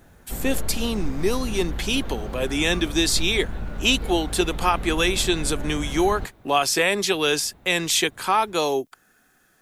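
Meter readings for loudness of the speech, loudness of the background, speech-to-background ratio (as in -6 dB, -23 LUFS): -23.0 LUFS, -33.5 LUFS, 10.5 dB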